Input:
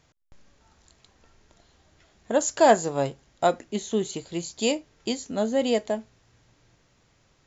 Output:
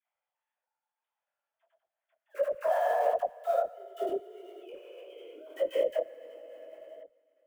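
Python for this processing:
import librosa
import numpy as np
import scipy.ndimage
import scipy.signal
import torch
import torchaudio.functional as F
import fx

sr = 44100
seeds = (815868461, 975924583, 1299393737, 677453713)

y = fx.sine_speech(x, sr)
y = fx.lowpass(y, sr, hz=1500.0, slope=6)
y = fx.mod_noise(y, sr, seeds[0], snr_db=34)
y = fx.low_shelf(y, sr, hz=310.0, db=-9.0)
y = fx.echo_feedback(y, sr, ms=88, feedback_pct=46, wet_db=-6.5)
y = fx.rev_plate(y, sr, seeds[1], rt60_s=3.0, hf_ratio=0.95, predelay_ms=0, drr_db=-3.0)
y = fx.level_steps(y, sr, step_db=22)
y = fx.dispersion(y, sr, late='lows', ms=71.0, hz=670.0)
y = fx.detune_double(y, sr, cents=54)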